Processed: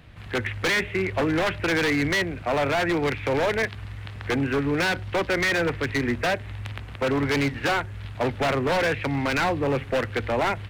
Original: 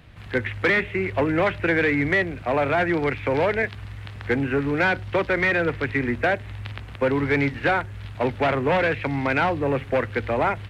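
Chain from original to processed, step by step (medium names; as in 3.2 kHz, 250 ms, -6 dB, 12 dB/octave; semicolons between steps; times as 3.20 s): wavefolder -17.5 dBFS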